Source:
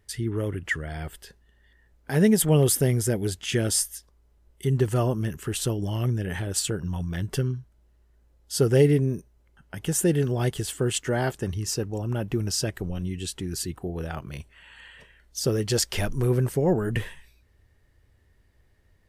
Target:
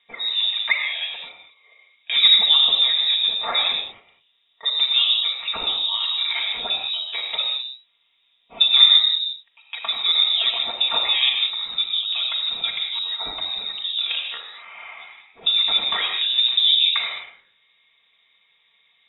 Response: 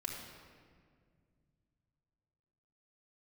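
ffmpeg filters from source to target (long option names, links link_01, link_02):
-filter_complex "[0:a]highpass=frequency=240:width=0.5412,highpass=frequency=240:width=1.3066,bandreject=frequency=2500:width=11,asplit=2[link_01][link_02];[link_02]acompressor=threshold=-31dB:ratio=6,volume=-2dB[link_03];[link_01][link_03]amix=inputs=2:normalize=0[link_04];[1:a]atrim=start_sample=2205,atrim=end_sample=6615,asetrate=30429,aresample=44100[link_05];[link_04][link_05]afir=irnorm=-1:irlink=0,lowpass=frequency=3400:width_type=q:width=0.5098,lowpass=frequency=3400:width_type=q:width=0.6013,lowpass=frequency=3400:width_type=q:width=0.9,lowpass=frequency=3400:width_type=q:width=2.563,afreqshift=-4000,volume=4dB"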